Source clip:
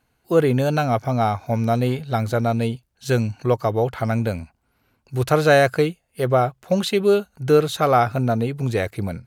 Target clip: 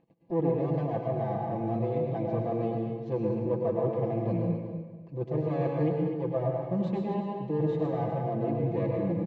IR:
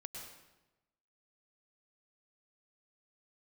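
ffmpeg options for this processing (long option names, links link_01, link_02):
-filter_complex "[0:a]areverse,acompressor=threshold=-23dB:ratio=6,areverse,equalizer=frequency=1400:width=2.4:gain=-13.5,aresample=16000,aeval=exprs='max(val(0),0)':channel_layout=same,aresample=44100,tiltshelf=frequency=800:gain=9.5,agate=range=-35dB:threshold=-59dB:ratio=16:detection=peak,highpass=160,lowpass=2600,aecho=1:1:6:0.9[link_01];[1:a]atrim=start_sample=2205[link_02];[link_01][link_02]afir=irnorm=-1:irlink=0,acompressor=mode=upward:threshold=-40dB:ratio=2.5,asuperstop=centerf=1400:order=20:qfactor=6,aecho=1:1:250|500|750:0.355|0.0639|0.0115"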